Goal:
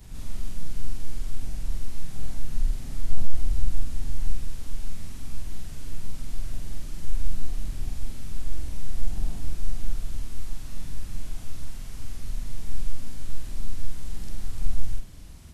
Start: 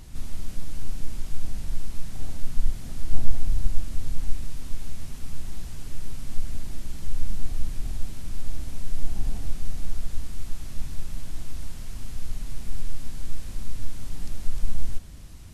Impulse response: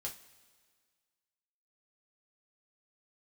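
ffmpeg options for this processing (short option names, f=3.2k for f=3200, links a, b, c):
-af "afftfilt=real='re':imag='-im':win_size=4096:overlap=0.75,apsyclip=9.5dB,volume=-6dB"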